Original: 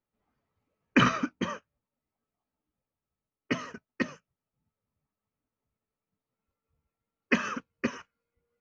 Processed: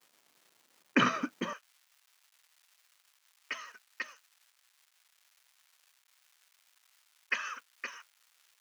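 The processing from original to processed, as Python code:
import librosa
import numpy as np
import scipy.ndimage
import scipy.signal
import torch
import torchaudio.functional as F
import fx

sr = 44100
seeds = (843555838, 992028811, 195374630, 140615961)

y = fx.dmg_crackle(x, sr, seeds[0], per_s=590.0, level_db=-49.0)
y = fx.highpass(y, sr, hz=fx.steps((0.0, 210.0), (1.53, 1200.0)), slope=12)
y = y * 10.0 ** (-3.0 / 20.0)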